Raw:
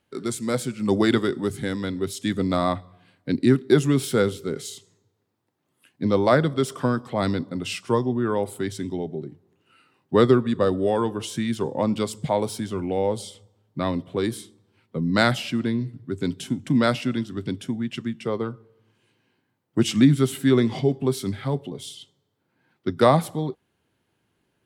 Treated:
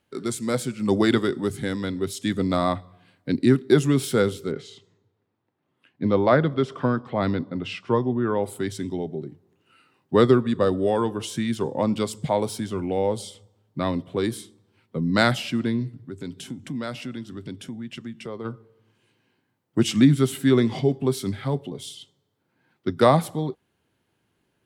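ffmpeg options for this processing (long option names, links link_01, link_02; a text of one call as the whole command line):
ffmpeg -i in.wav -filter_complex "[0:a]asettb=1/sr,asplit=3[link_01][link_02][link_03];[link_01]atrim=end=4.514[link_04];[link_02]atrim=start=4.51:end=8.44,asetpts=PTS-STARTPTS,afade=type=in:duration=0.004:curve=qsin,afade=type=out:start_time=3.926:duration=0.004:curve=qsin,lowpass=3200[link_05];[link_03]atrim=start=8.436[link_06];[link_04][link_05]acrossfade=duration=0.004:curve1=hsin:curve2=qsin[link_07];[link_07][link_06]acrossfade=duration=0.004:curve1=qsin:curve2=hsin,asplit=3[link_08][link_09][link_10];[link_08]afade=type=out:start_time=15.88:duration=0.02[link_11];[link_09]acompressor=threshold=-36dB:ratio=2:attack=3.2:release=140:knee=1:detection=peak,afade=type=in:start_time=15.88:duration=0.02,afade=type=out:start_time=18.44:duration=0.02[link_12];[link_10]afade=type=in:start_time=18.44:duration=0.02[link_13];[link_11][link_12][link_13]amix=inputs=3:normalize=0" out.wav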